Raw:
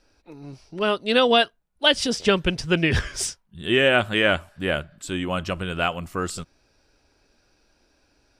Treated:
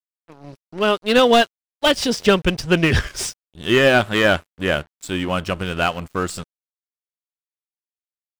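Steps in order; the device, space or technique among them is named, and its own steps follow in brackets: early transistor amplifier (crossover distortion -41.5 dBFS; slew limiter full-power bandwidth 280 Hz); gain +5 dB

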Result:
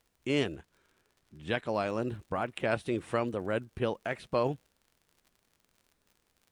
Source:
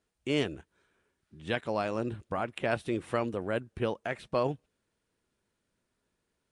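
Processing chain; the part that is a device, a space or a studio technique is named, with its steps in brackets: vinyl LP (wow and flutter; crackle 56/s -49 dBFS; pink noise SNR 43 dB); 0.51–1.69 high shelf 8800 Hz -5 dB

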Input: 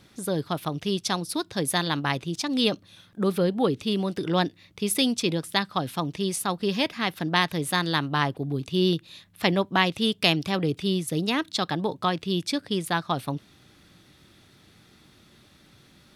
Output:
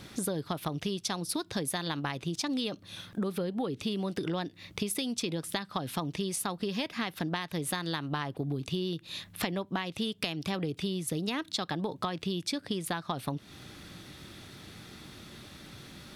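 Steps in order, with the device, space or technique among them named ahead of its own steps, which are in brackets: serial compression, leveller first (compressor 2.5:1, threshold -26 dBFS, peak gain reduction 7.5 dB; compressor 6:1, threshold -38 dBFS, peak gain reduction 15.5 dB); gain +7.5 dB

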